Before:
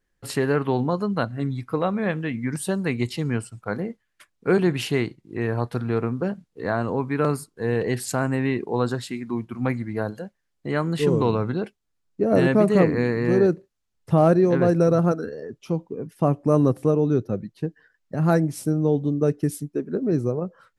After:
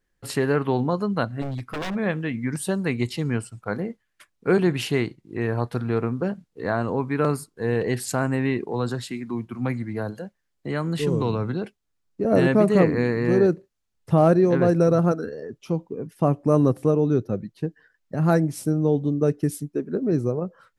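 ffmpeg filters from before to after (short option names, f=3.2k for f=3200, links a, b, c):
-filter_complex "[0:a]asplit=3[a][b][c];[a]afade=t=out:st=1.41:d=0.02[d];[b]aeval=exprs='0.0631*(abs(mod(val(0)/0.0631+3,4)-2)-1)':c=same,afade=t=in:st=1.41:d=0.02,afade=t=out:st=1.94:d=0.02[e];[c]afade=t=in:st=1.94:d=0.02[f];[d][e][f]amix=inputs=3:normalize=0,asettb=1/sr,asplit=3[g][h][i];[g]atrim=end=8.714[j];[h]atrim=start=8.71:end=12.25,asetpts=PTS-STARTPTS,afade=t=in:d=0.004:c=qsin,afade=t=out:st=3.536:d=0.004:c=qsin,acrossover=split=190|3000[k][l][m];[l]acompressor=threshold=-29dB:ratio=1.5:attack=3.2:release=140:knee=2.83:detection=peak[n];[k][n][m]amix=inputs=3:normalize=0[o];[i]atrim=start=12.246[p];[j][o]acrossfade=d=0.004:c1=hsin:c2=qsin[q];[q][p]acrossfade=d=0.004:c1=qsin:c2=hsin"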